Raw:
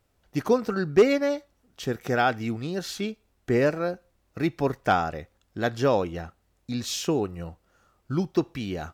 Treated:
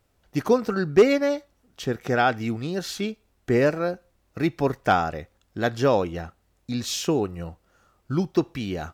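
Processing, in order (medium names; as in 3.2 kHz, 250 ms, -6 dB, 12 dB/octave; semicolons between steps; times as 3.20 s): 1.82–2.35 s: treble shelf 6.3 kHz -> 12 kHz -7.5 dB; trim +2 dB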